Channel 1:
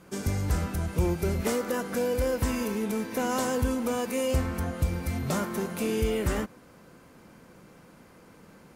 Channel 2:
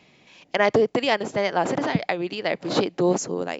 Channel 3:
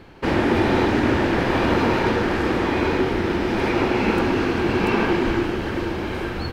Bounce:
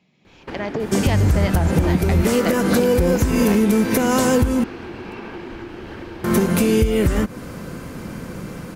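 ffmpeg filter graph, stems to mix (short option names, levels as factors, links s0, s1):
-filter_complex "[0:a]lowshelf=f=220:g=7.5,acompressor=threshold=0.0316:ratio=10,equalizer=f=810:t=o:w=0.77:g=-3,adelay=800,volume=0.891,asplit=3[s0][s1][s2];[s0]atrim=end=4.64,asetpts=PTS-STARTPTS,afade=t=out:st=4.636:d=0.004:c=hsin[s3];[s1]atrim=start=4.64:end=6.24,asetpts=PTS-STARTPTS,volume=0[s4];[s2]atrim=start=6.24,asetpts=PTS-STARTPTS,afade=t=in:d=0.004:c=hsin[s5];[s3][s4][s5]concat=n=3:v=0:a=1[s6];[1:a]equalizer=f=180:t=o:w=0.77:g=12,acompressor=threshold=0.00631:ratio=1.5,volume=0.266[s7];[2:a]acompressor=threshold=0.0447:ratio=6,adelay=250,volume=0.237[s8];[s6][s7]amix=inputs=2:normalize=0,dynaudnorm=f=190:g=9:m=3.16,alimiter=limit=0.158:level=0:latency=1:release=138,volume=1[s9];[s8][s9]amix=inputs=2:normalize=0,dynaudnorm=f=110:g=5:m=2.82"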